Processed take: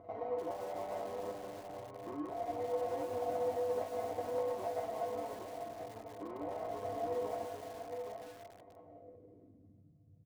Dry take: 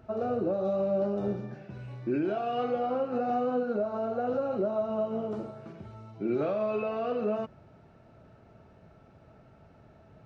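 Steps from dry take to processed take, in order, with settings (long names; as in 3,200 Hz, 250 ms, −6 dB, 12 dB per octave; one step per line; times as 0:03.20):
bass and treble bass −14 dB, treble +8 dB
amplitude modulation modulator 160 Hz, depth 40%
downward compressor 2 to 1, threshold −54 dBFS, peak gain reduction 14 dB
single-tap delay 816 ms −6.5 dB
sample-rate reduction 1,400 Hz, jitter 20%
high-shelf EQ 2,100 Hz +5.5 dB
notch comb filter 870 Hz
low-pass filter sweep 830 Hz → 150 Hz, 0:08.76–0:09.98
tuned comb filter 99 Hz, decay 0.23 s, harmonics odd, mix 90%
feedback echo at a low word length 296 ms, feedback 55%, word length 10 bits, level −9 dB
level +13.5 dB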